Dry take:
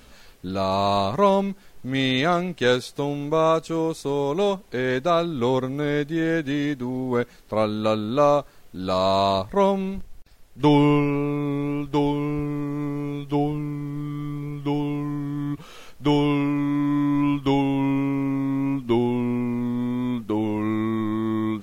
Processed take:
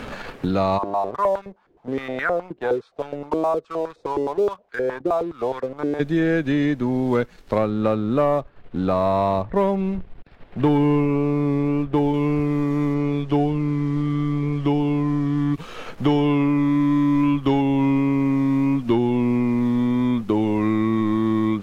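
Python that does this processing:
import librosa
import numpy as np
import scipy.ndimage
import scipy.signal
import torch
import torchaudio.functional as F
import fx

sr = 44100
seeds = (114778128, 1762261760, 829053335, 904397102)

y = fx.filter_held_bandpass(x, sr, hz=9.6, low_hz=340.0, high_hz=1500.0, at=(0.77, 5.99), fade=0.02)
y = fx.air_absorb(y, sr, metres=460.0, at=(7.58, 12.14))
y = fx.air_absorb(y, sr, metres=60.0, at=(12.94, 15.54))
y = fx.high_shelf(y, sr, hz=7300.0, db=-12.0)
y = fx.leveller(y, sr, passes=1)
y = fx.band_squash(y, sr, depth_pct=70)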